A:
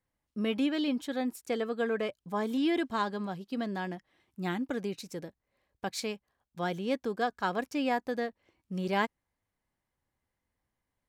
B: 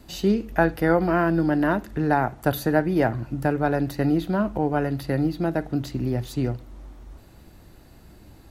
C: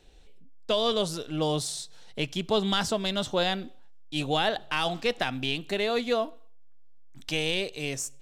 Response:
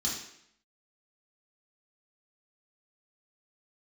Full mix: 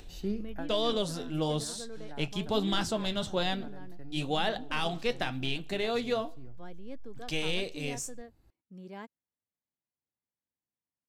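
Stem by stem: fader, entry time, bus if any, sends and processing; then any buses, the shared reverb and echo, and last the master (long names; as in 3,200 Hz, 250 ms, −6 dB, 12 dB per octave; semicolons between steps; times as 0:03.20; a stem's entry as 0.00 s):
−19.0 dB, 0.00 s, no send, high-pass filter 190 Hz 12 dB per octave; low-shelf EQ 470 Hz +8 dB
−14.5 dB, 0.00 s, no send, automatic ducking −14 dB, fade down 0.20 s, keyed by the third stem
−0.5 dB, 0.00 s, no send, upward compression, threshold −42 dBFS; flanger 1.1 Hz, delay 8 ms, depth 5.3 ms, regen −62%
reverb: not used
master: low-shelf EQ 110 Hz +9 dB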